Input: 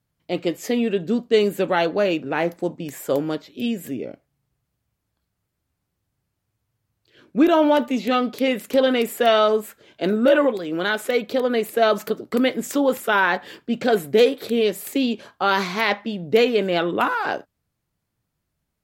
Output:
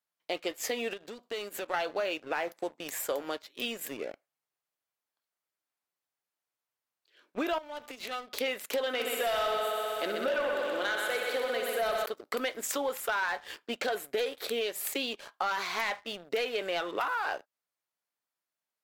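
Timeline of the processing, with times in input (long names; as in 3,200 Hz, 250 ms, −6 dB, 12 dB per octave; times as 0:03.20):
0:00.93–0:01.74: downward compressor 5 to 1, threshold −29 dBFS
0:07.58–0:08.37: downward compressor 16 to 1, threshold −30 dBFS
0:08.87–0:12.06: echo machine with several playback heads 63 ms, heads first and second, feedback 70%, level −8 dB
whole clip: high-pass filter 650 Hz 12 dB per octave; leveller curve on the samples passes 2; downward compressor 4 to 1, threshold −26 dBFS; level −4.5 dB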